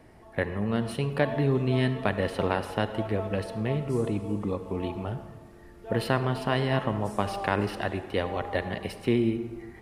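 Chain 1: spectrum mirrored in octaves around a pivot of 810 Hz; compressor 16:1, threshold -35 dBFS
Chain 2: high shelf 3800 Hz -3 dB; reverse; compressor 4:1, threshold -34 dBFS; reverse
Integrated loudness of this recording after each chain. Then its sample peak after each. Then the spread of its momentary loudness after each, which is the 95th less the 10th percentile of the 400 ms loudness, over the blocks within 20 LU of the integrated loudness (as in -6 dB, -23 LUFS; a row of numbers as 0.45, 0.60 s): -38.5, -38.0 LUFS; -23.5, -20.0 dBFS; 4, 4 LU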